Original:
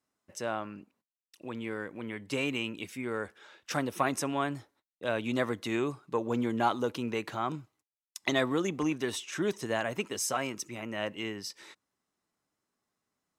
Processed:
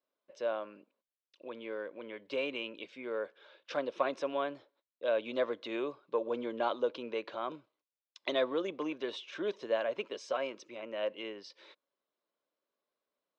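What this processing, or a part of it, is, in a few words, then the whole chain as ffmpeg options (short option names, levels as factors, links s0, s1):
phone earpiece: -af "highpass=460,equalizer=f=550:t=q:w=4:g=8,equalizer=f=800:t=q:w=4:g=-9,equalizer=f=1300:t=q:w=4:g=-6,equalizer=f=1900:t=q:w=4:g=-10,equalizer=f=2700:t=q:w=4:g=-4,lowpass=f=3800:w=0.5412,lowpass=f=3800:w=1.3066"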